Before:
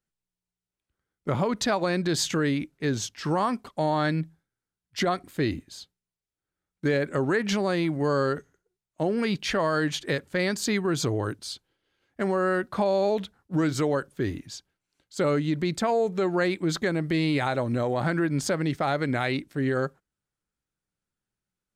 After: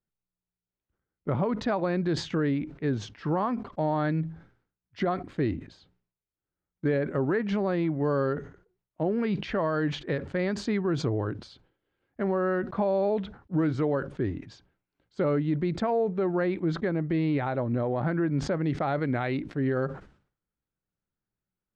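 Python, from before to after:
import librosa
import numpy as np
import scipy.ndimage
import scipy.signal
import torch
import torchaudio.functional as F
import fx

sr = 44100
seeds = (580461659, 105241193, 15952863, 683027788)

y = fx.spacing_loss(x, sr, db_at_10k=fx.steps((0.0, 36.0), (16.02, 41.0), (18.63, 30.0)))
y = fx.sustainer(y, sr, db_per_s=120.0)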